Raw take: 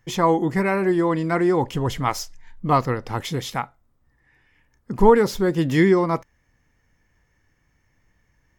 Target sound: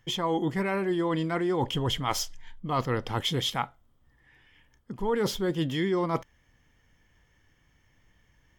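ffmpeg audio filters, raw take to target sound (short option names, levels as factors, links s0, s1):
-af "equalizer=f=3200:w=6.1:g=13.5,areverse,acompressor=threshold=0.0631:ratio=10,areverse"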